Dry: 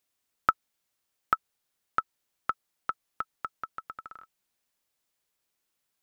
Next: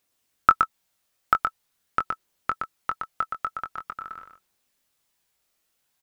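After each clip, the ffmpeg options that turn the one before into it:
-filter_complex "[0:a]aphaser=in_gain=1:out_gain=1:delay=1.7:decay=0.24:speed=0.45:type=triangular,asplit=2[s0][s1];[s1]adelay=22,volume=0.398[s2];[s0][s2]amix=inputs=2:normalize=0,aecho=1:1:120:0.531,volume=1.68"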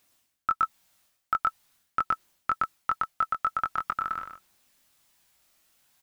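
-af "equalizer=f=450:w=4.4:g=-7.5,areverse,acompressor=threshold=0.0316:ratio=16,areverse,volume=2.37"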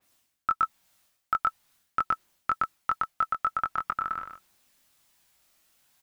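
-af "adynamicequalizer=threshold=0.01:dfrequency=2800:dqfactor=0.7:tfrequency=2800:tqfactor=0.7:attack=5:release=100:ratio=0.375:range=2.5:mode=cutabove:tftype=highshelf"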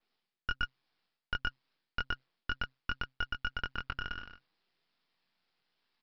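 -af "afreqshift=130,aresample=11025,aeval=exprs='max(val(0),0)':c=same,aresample=44100,volume=0.596"

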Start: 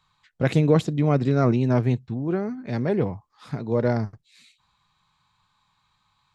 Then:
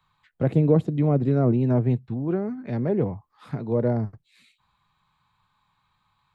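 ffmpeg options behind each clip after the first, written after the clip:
-filter_complex "[0:a]equalizer=f=5900:t=o:w=1.2:g=-10.5,acrossover=split=140|810[s0][s1][s2];[s2]acompressor=threshold=0.00708:ratio=6[s3];[s0][s1][s3]amix=inputs=3:normalize=0"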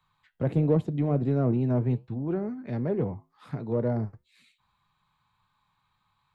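-filter_complex "[0:a]flanger=delay=6.6:depth=3.1:regen=-81:speed=1.4:shape=sinusoidal,asplit=2[s0][s1];[s1]asoftclip=type=tanh:threshold=0.0501,volume=0.355[s2];[s0][s2]amix=inputs=2:normalize=0,volume=0.841"

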